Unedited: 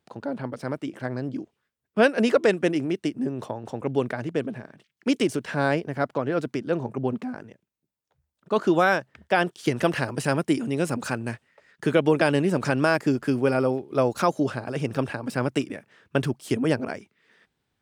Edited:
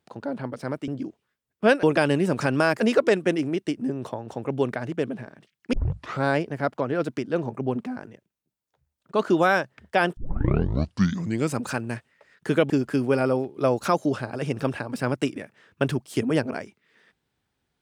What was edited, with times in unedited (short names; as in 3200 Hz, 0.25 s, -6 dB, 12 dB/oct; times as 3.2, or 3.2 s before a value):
0.88–1.22 cut
5.1 tape start 0.51 s
9.54 tape start 1.43 s
12.07–13.04 move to 2.17